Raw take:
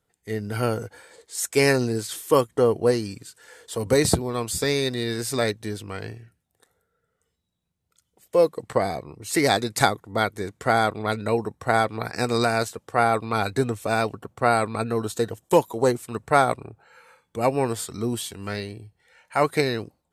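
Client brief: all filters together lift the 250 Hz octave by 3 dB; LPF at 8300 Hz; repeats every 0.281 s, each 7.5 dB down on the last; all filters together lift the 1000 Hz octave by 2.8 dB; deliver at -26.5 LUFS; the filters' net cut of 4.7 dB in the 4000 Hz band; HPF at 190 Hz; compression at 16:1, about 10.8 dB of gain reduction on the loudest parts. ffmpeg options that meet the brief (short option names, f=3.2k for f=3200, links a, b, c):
-af "highpass=190,lowpass=8.3k,equalizer=f=250:t=o:g=5,equalizer=f=1k:t=o:g=4,equalizer=f=4k:t=o:g=-5.5,acompressor=threshold=-21dB:ratio=16,aecho=1:1:281|562|843|1124|1405:0.422|0.177|0.0744|0.0312|0.0131,volume=2dB"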